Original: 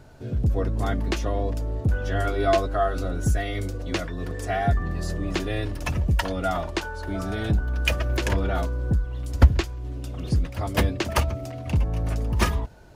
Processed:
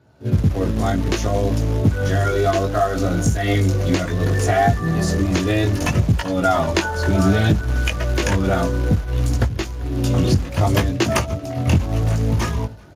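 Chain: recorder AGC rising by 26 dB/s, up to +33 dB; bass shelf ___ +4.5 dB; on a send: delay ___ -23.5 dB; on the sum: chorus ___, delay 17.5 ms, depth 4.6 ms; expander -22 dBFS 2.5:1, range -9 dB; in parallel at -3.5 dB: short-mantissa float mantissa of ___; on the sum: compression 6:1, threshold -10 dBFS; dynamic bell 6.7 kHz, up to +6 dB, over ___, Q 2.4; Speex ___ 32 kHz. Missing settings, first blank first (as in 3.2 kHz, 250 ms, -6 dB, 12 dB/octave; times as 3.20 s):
250 Hz, 391 ms, 0.64 Hz, 2-bit, -48 dBFS, 36 kbps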